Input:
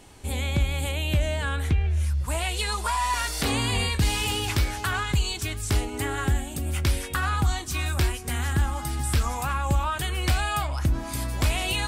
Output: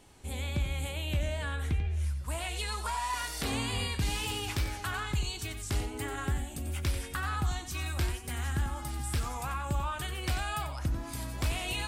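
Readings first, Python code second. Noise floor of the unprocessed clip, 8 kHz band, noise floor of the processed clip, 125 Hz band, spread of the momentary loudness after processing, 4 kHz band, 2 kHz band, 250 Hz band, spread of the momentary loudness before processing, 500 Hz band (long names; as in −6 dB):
−35 dBFS, −7.5 dB, −42 dBFS, −7.5 dB, 4 LU, −7.5 dB, −7.5 dB, −7.5 dB, 4 LU, −7.5 dB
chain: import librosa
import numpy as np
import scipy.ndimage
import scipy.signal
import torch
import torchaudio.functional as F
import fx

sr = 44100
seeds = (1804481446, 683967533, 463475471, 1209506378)

y = fx.wow_flutter(x, sr, seeds[0], rate_hz=2.1, depth_cents=38.0)
y = y + 10.0 ** (-10.0 / 20.0) * np.pad(y, (int(92 * sr / 1000.0), 0))[:len(y)]
y = y * librosa.db_to_amplitude(-8.0)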